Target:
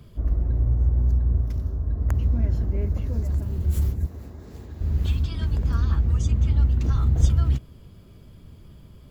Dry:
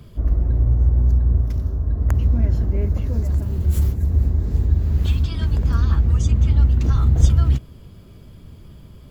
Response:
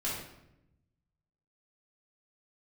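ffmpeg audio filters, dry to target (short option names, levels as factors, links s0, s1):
-filter_complex "[0:a]asettb=1/sr,asplit=3[s0][s1][s2];[s0]atrim=end=4.064[s3];[s1]atrim=start=4.06:end=4.81,asetpts=PTS-STARTPTS,afade=t=in:d=0.004:c=qsin,afade=t=out:st=0.746:d=0.004:c=qsin,highpass=f=540:p=1[s4];[s2]atrim=start=4.806[s5];[s3][s4]acrossfade=d=0.004:c1=hsin:c2=qsin[s6];[s6][s5]acrossfade=d=0.004:c1=qsin:c2=hsin,volume=0.596"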